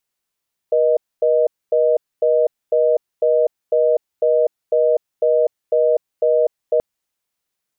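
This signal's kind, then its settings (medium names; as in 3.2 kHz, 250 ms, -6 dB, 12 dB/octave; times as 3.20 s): call progress tone reorder tone, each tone -15 dBFS 6.08 s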